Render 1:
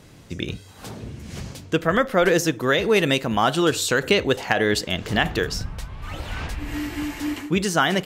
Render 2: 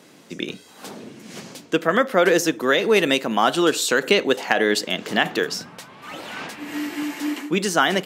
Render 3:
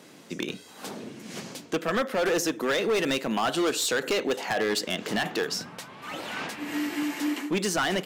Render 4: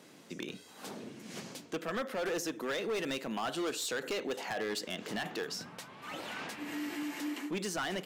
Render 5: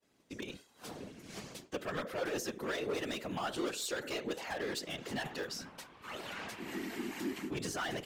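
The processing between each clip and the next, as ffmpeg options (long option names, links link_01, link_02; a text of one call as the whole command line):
ffmpeg -i in.wav -af "highpass=frequency=200:width=0.5412,highpass=frequency=200:width=1.3066,volume=1.5dB" out.wav
ffmpeg -i in.wav -filter_complex "[0:a]asplit=2[link_01][link_02];[link_02]acompressor=threshold=-25dB:ratio=6,volume=-1dB[link_03];[link_01][link_03]amix=inputs=2:normalize=0,volume=14.5dB,asoftclip=hard,volume=-14.5dB,volume=-6.5dB" out.wav
ffmpeg -i in.wav -af "alimiter=level_in=0.5dB:limit=-24dB:level=0:latency=1:release=57,volume=-0.5dB,volume=-6dB" out.wav
ffmpeg -i in.wav -af "afftfilt=real='hypot(re,im)*cos(2*PI*random(0))':imag='hypot(re,im)*sin(2*PI*random(1))':win_size=512:overlap=0.75,agate=range=-33dB:threshold=-52dB:ratio=3:detection=peak,volume=4dB" out.wav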